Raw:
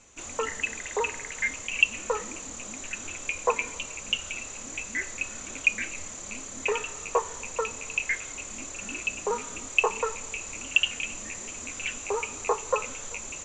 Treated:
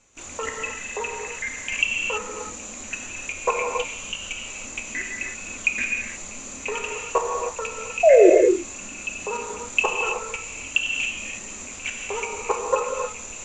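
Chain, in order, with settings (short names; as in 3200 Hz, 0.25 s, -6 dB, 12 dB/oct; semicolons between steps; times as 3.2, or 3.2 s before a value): level quantiser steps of 11 dB; painted sound fall, 8.03–8.3, 330–710 Hz -17 dBFS; non-linear reverb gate 0.35 s flat, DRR 0.5 dB; gain +4.5 dB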